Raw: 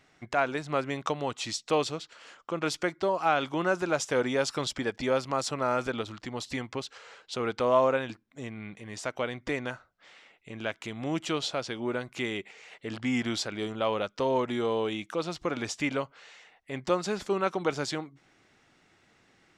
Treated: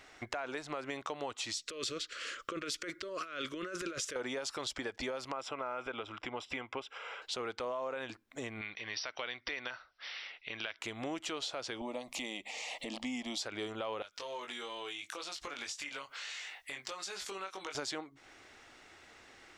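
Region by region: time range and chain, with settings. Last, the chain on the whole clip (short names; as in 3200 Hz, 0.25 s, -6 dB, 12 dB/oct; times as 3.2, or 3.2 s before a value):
1.54–4.16 negative-ratio compressor -35 dBFS + Butterworth band-stop 820 Hz, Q 1.2
5.32–7.22 polynomial smoothing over 25 samples + tilt +1.5 dB/oct + notch 1800 Hz, Q 6.4
8.61–10.79 brick-wall FIR low-pass 5900 Hz + tilt shelf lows -8 dB, about 1300 Hz
11.81–13.41 upward compressor, threshold -30 dBFS + fixed phaser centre 400 Hz, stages 6
14.02–17.75 tilt shelf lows -8.5 dB, about 1200 Hz + compressor 3:1, threshold -48 dBFS + doubler 21 ms -4 dB
whole clip: bell 160 Hz -14.5 dB 1.2 oct; limiter -23.5 dBFS; compressor 3:1, threshold -47 dBFS; gain +7.5 dB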